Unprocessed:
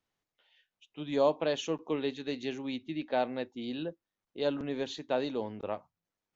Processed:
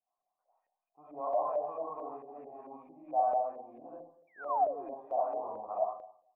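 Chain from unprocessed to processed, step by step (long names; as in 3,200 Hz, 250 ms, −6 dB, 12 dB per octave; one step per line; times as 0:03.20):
comb and all-pass reverb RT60 0.63 s, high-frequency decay 0.55×, pre-delay 30 ms, DRR −8.5 dB
sound drawn into the spectrogram fall, 0:04.27–0:04.94, 250–2,400 Hz −22 dBFS
brickwall limiter −15.5 dBFS, peak gain reduction 11 dB
formant resonators in series a
auto-filter low-pass saw up 4.5 Hz 540–1,900 Hz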